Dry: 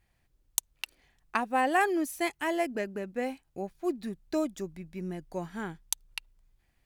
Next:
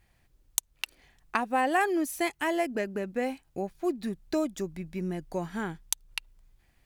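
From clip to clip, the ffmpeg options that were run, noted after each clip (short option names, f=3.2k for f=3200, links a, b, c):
-af "acompressor=threshold=-37dB:ratio=1.5,volume=5.5dB"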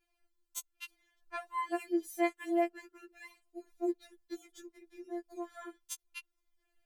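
-af "afftfilt=real='re*4*eq(mod(b,16),0)':imag='im*4*eq(mod(b,16),0)':win_size=2048:overlap=0.75,volume=-9dB"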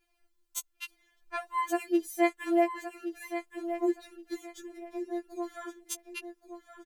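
-af "aecho=1:1:1121|2242|3363:0.316|0.0759|0.0182,volume=5dB"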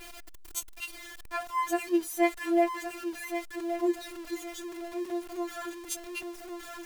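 -af "aeval=exprs='val(0)+0.5*0.0106*sgn(val(0))':c=same"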